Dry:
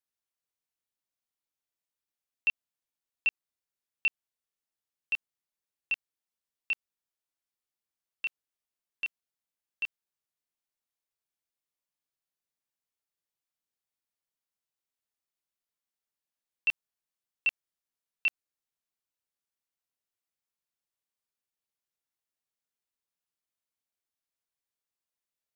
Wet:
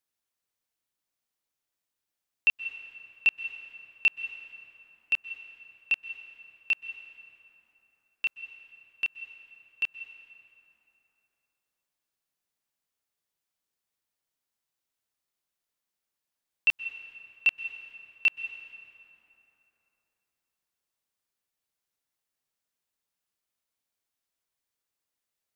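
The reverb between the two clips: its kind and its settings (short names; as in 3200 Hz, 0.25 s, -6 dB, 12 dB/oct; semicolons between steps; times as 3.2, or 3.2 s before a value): plate-style reverb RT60 3.6 s, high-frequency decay 0.55×, pre-delay 0.115 s, DRR 10.5 dB; gain +4.5 dB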